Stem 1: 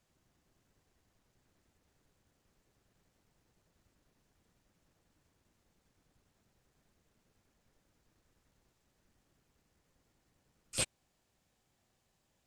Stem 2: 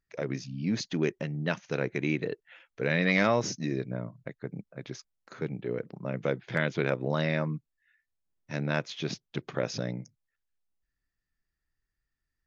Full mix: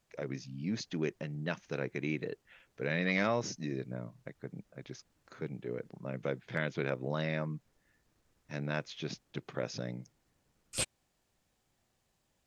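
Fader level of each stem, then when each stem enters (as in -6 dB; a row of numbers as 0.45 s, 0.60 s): 0.0 dB, -6.0 dB; 0.00 s, 0.00 s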